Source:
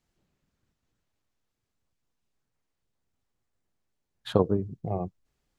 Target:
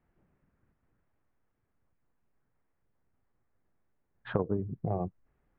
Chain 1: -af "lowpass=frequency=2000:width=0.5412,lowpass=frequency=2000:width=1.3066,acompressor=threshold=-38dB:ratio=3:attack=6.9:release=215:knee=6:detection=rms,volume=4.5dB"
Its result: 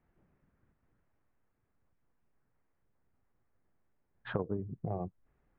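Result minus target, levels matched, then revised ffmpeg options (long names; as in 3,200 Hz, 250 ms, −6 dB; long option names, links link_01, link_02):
downward compressor: peak gain reduction +4.5 dB
-af "lowpass=frequency=2000:width=0.5412,lowpass=frequency=2000:width=1.3066,acompressor=threshold=-31dB:ratio=3:attack=6.9:release=215:knee=6:detection=rms,volume=4.5dB"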